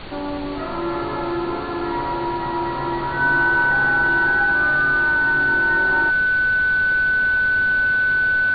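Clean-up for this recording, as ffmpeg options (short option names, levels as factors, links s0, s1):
-af "bandreject=f=114.9:t=h:w=4,bandreject=f=229.8:t=h:w=4,bandreject=f=344.7:t=h:w=4,bandreject=f=459.6:t=h:w=4,bandreject=f=574.5:t=h:w=4,bandreject=f=1500:w=30,afftdn=nr=30:nf=-26"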